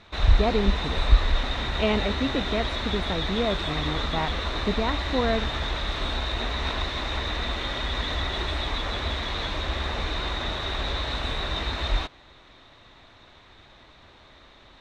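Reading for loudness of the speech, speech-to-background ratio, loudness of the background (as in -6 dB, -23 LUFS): -29.0 LUFS, -1.0 dB, -28.0 LUFS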